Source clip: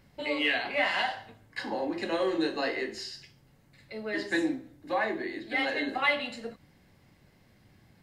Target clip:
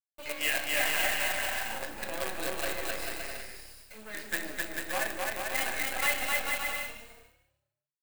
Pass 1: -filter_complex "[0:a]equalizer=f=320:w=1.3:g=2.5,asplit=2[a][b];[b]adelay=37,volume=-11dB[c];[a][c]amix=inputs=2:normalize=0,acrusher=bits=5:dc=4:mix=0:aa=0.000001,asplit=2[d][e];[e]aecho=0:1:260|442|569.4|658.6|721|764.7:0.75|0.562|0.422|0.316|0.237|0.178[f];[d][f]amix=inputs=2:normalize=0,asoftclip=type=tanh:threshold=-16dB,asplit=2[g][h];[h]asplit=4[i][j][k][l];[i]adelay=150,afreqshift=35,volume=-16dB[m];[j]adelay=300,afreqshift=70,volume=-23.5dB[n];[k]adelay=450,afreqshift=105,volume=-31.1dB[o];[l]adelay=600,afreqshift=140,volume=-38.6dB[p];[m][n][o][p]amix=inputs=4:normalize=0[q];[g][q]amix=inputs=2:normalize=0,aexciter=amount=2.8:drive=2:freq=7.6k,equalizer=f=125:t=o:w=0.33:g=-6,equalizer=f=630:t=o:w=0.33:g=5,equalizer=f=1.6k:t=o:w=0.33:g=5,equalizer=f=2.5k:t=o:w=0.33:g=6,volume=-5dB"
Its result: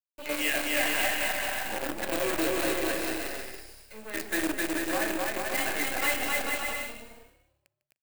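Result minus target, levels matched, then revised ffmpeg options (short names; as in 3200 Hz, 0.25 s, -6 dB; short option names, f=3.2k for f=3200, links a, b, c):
250 Hz band +9.5 dB
-filter_complex "[0:a]equalizer=f=320:w=1.3:g=-8,asplit=2[a][b];[b]adelay=37,volume=-11dB[c];[a][c]amix=inputs=2:normalize=0,acrusher=bits=5:dc=4:mix=0:aa=0.000001,asplit=2[d][e];[e]aecho=0:1:260|442|569.4|658.6|721|764.7:0.75|0.562|0.422|0.316|0.237|0.178[f];[d][f]amix=inputs=2:normalize=0,asoftclip=type=tanh:threshold=-16dB,asplit=2[g][h];[h]asplit=4[i][j][k][l];[i]adelay=150,afreqshift=35,volume=-16dB[m];[j]adelay=300,afreqshift=70,volume=-23.5dB[n];[k]adelay=450,afreqshift=105,volume=-31.1dB[o];[l]adelay=600,afreqshift=140,volume=-38.6dB[p];[m][n][o][p]amix=inputs=4:normalize=0[q];[g][q]amix=inputs=2:normalize=0,aexciter=amount=2.8:drive=2:freq=7.6k,equalizer=f=125:t=o:w=0.33:g=-6,equalizer=f=630:t=o:w=0.33:g=5,equalizer=f=1.6k:t=o:w=0.33:g=5,equalizer=f=2.5k:t=o:w=0.33:g=6,volume=-5dB"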